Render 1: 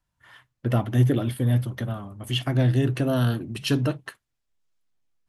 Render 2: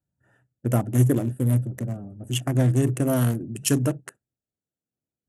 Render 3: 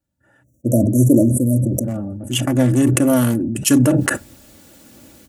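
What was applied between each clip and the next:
adaptive Wiener filter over 41 samples; high-pass filter 100 Hz; high shelf with overshoot 5,600 Hz +11.5 dB, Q 3; level +2 dB
time-frequency box erased 0:00.44–0:01.84, 690–5,500 Hz; comb filter 3.5 ms, depth 57%; level that may fall only so fast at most 26 dB per second; level +5.5 dB

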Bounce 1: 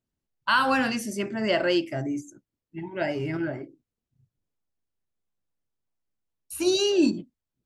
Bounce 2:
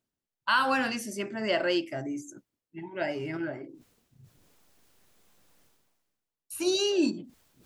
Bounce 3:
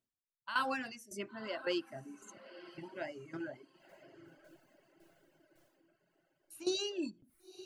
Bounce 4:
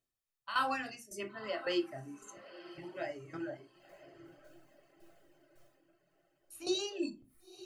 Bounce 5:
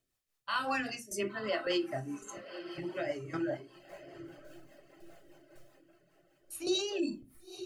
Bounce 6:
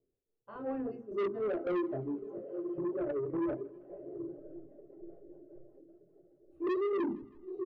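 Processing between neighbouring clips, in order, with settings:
low-shelf EQ 150 Hz −10.5 dB; reversed playback; upward compression, threshold −37 dBFS; reversed playback; level −2.5 dB
shaped tremolo saw down 1.8 Hz, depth 75%; feedback delay with all-pass diffusion 990 ms, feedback 40%, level −14 dB; reverb reduction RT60 1.1 s; level −6.5 dB
convolution reverb RT60 0.25 s, pre-delay 3 ms, DRR 5.5 dB
brickwall limiter −30.5 dBFS, peak gain reduction 10.5 dB; rotating-speaker cabinet horn 5 Hz; level +9 dB
low-pass with resonance 430 Hz, resonance Q 4.9; soft clipping −29 dBFS, distortion −7 dB; repeating echo 160 ms, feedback 56%, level −24 dB

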